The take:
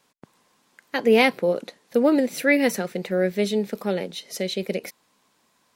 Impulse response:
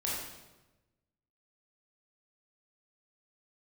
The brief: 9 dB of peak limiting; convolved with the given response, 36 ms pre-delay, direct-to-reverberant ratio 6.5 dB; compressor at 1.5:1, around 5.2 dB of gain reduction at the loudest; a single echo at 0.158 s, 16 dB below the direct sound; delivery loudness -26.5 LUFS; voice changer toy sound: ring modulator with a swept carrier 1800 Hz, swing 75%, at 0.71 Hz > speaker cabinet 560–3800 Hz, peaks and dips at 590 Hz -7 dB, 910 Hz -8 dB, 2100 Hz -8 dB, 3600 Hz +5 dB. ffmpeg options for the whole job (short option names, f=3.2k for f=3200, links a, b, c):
-filter_complex "[0:a]acompressor=threshold=-27dB:ratio=1.5,alimiter=limit=-18.5dB:level=0:latency=1,aecho=1:1:158:0.158,asplit=2[a][b];[1:a]atrim=start_sample=2205,adelay=36[c];[b][c]afir=irnorm=-1:irlink=0,volume=-11.5dB[d];[a][d]amix=inputs=2:normalize=0,aeval=exprs='val(0)*sin(2*PI*1800*n/s+1800*0.75/0.71*sin(2*PI*0.71*n/s))':c=same,highpass=560,equalizer=f=590:t=q:w=4:g=-7,equalizer=f=910:t=q:w=4:g=-8,equalizer=f=2.1k:t=q:w=4:g=-8,equalizer=f=3.6k:t=q:w=4:g=5,lowpass=f=3.8k:w=0.5412,lowpass=f=3.8k:w=1.3066,volume=5.5dB"